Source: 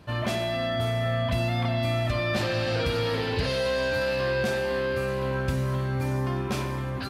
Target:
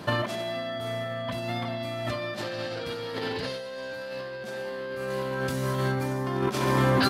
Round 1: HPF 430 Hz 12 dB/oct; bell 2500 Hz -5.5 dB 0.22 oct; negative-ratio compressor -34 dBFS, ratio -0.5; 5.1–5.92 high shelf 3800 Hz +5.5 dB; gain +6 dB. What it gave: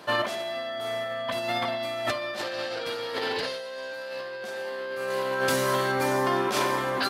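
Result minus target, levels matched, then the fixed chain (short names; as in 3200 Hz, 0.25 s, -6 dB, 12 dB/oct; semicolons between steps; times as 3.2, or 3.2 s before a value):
125 Hz band -12.0 dB
HPF 170 Hz 12 dB/oct; bell 2500 Hz -5.5 dB 0.22 oct; negative-ratio compressor -34 dBFS, ratio -0.5; 5.1–5.92 high shelf 3800 Hz +5.5 dB; gain +6 dB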